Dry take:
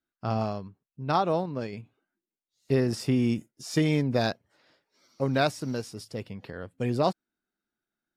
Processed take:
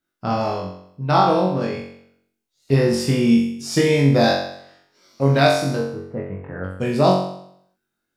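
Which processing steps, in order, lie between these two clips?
5.76–6.64 s: inverse Chebyshev low-pass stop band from 4.4 kHz, stop band 50 dB; flutter echo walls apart 3.7 m, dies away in 0.68 s; trim +5.5 dB

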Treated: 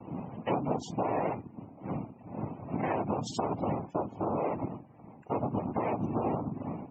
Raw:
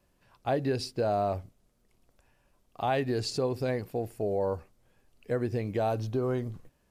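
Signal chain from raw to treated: wind noise 250 Hz -40 dBFS; low-pass that closes with the level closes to 2.5 kHz, closed at -25 dBFS; compression 4:1, threshold -32 dBFS, peak gain reduction 7.5 dB; noise-vocoded speech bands 4; loudest bins only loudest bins 64; trim +4 dB

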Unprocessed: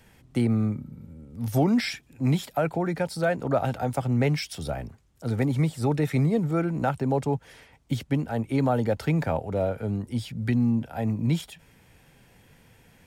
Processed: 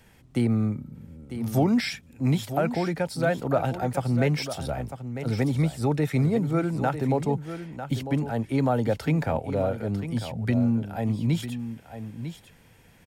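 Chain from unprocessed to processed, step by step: delay 949 ms -10.5 dB

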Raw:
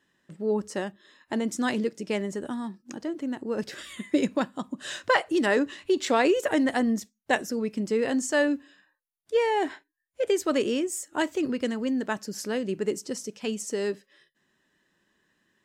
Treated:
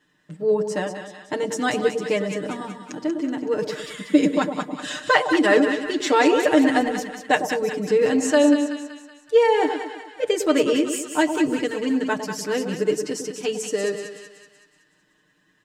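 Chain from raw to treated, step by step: treble shelf 8 kHz -4 dB; comb 6.6 ms, depth 95%; two-band feedback delay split 960 Hz, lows 106 ms, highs 188 ms, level -7 dB; trim +2.5 dB

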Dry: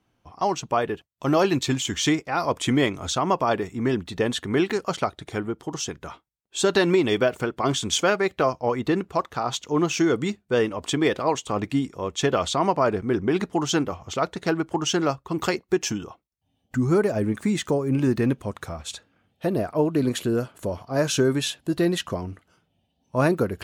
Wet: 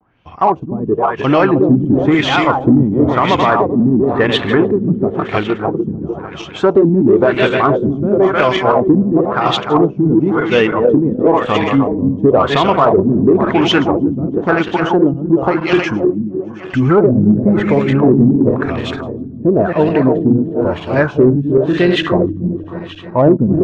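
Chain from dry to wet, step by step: backward echo that repeats 153 ms, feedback 72%, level -5.5 dB; LFO low-pass sine 0.97 Hz 210–3000 Hz; vibrato 0.56 Hz 40 cents; in parallel at -6 dB: saturation -14.5 dBFS, distortion -13 dB; on the sum: loudness maximiser +6.5 dB; trim -1 dB

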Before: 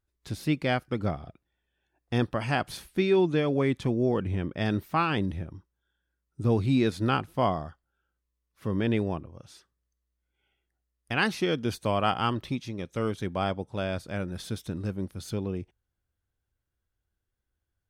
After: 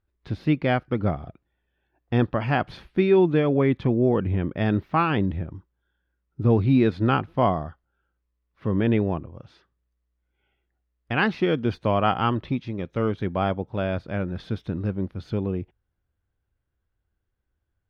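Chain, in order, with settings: distance through air 320 m; trim +5.5 dB

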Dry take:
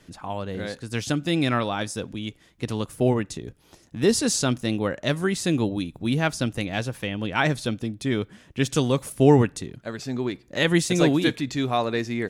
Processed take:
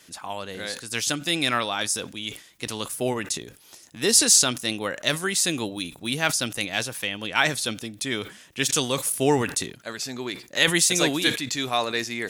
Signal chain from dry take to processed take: tilt EQ +3.5 dB/octave; decay stretcher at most 140 dB/s

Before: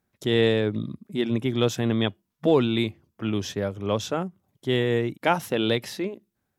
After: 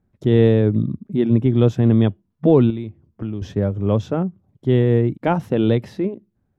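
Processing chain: bass shelf 70 Hz -7.5 dB; 2.70–3.42 s: compression 4:1, threshold -35 dBFS, peak gain reduction 13 dB; tilt EQ -4.5 dB/octave

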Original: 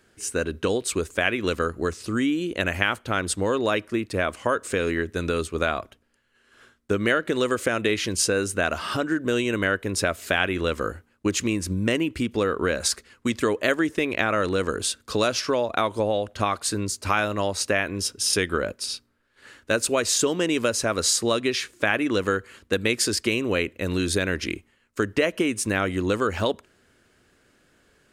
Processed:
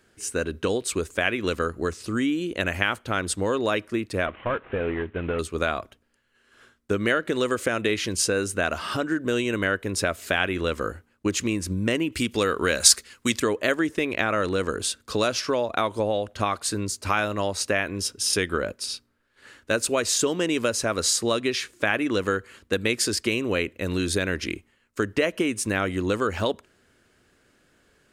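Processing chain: 4.26–5.39 s: CVSD coder 16 kbps; 12.12–13.40 s: treble shelf 2.3 kHz +11.5 dB; trim -1 dB

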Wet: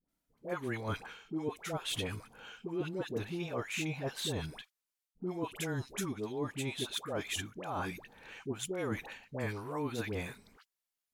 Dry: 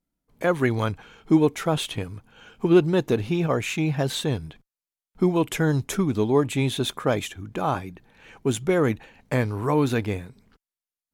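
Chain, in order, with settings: bass shelf 330 Hz -8 dB; reverse; compression 12:1, threshold -36 dBFS, peak gain reduction 20.5 dB; reverse; phase dispersion highs, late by 86 ms, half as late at 830 Hz; trim +2.5 dB

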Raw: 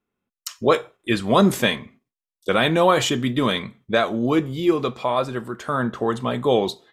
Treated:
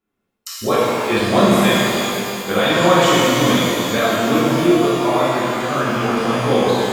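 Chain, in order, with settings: in parallel at -3 dB: compression, threshold -25 dBFS, peak gain reduction 13 dB; on the sum: pitch-shifted reverb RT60 2.7 s, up +12 st, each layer -8 dB, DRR -9 dB; trim -7 dB

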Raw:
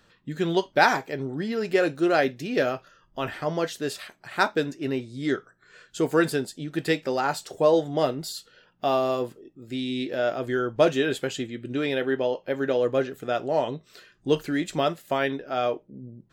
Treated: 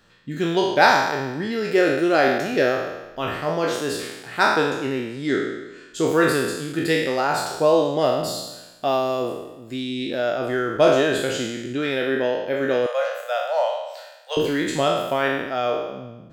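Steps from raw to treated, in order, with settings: spectral sustain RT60 1.08 s; 12.86–14.37 s: steep high-pass 510 Hz 96 dB/octave; trim +1 dB

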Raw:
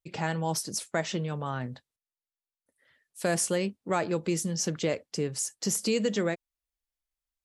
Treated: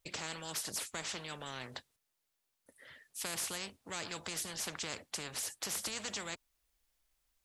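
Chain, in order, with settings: spectrum-flattening compressor 4:1; trim -8.5 dB

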